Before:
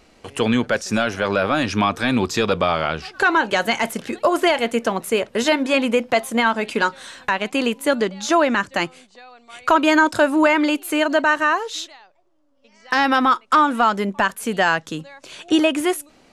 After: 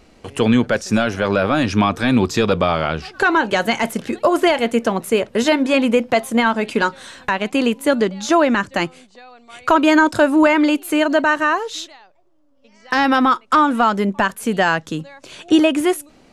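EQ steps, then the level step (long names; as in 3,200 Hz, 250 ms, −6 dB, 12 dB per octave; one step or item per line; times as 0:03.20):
low-shelf EQ 430 Hz +6 dB
0.0 dB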